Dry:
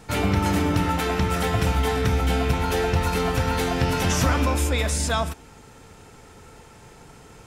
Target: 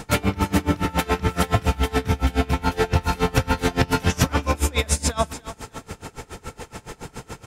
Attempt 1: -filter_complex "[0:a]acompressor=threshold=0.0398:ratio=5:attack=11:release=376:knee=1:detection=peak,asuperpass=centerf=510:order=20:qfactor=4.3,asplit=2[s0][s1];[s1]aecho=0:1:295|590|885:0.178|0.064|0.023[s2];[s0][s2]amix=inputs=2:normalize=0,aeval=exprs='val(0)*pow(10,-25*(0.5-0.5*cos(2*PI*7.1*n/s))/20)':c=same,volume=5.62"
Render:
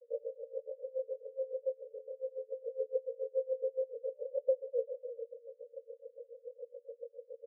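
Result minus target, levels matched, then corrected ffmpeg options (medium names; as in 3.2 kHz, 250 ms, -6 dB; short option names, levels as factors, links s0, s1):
500 Hz band +9.5 dB
-filter_complex "[0:a]acompressor=threshold=0.0398:ratio=5:attack=11:release=376:knee=1:detection=peak,asplit=2[s0][s1];[s1]aecho=0:1:295|590|885:0.178|0.064|0.023[s2];[s0][s2]amix=inputs=2:normalize=0,aeval=exprs='val(0)*pow(10,-25*(0.5-0.5*cos(2*PI*7.1*n/s))/20)':c=same,volume=5.62"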